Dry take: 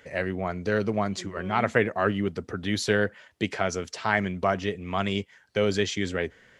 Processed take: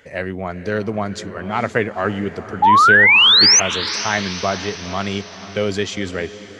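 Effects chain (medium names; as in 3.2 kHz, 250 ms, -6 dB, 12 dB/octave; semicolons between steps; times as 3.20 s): painted sound rise, 2.62–3.60 s, 810–6400 Hz -14 dBFS; echo that smears into a reverb 467 ms, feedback 53%, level -14 dB; trim +3.5 dB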